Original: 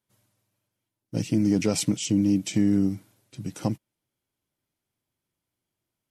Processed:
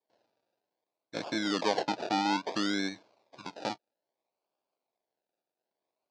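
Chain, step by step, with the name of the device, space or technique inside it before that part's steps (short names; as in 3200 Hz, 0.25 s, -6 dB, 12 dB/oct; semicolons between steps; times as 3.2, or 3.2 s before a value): circuit-bent sampling toy (decimation with a swept rate 32×, swing 60% 0.6 Hz; speaker cabinet 530–5400 Hz, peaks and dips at 640 Hz +4 dB, 1300 Hz -7 dB, 1900 Hz -8 dB, 3000 Hz -5 dB, 4500 Hz +3 dB); 1.81–2.52 high shelf 5300 Hz -5.5 dB; gain +1.5 dB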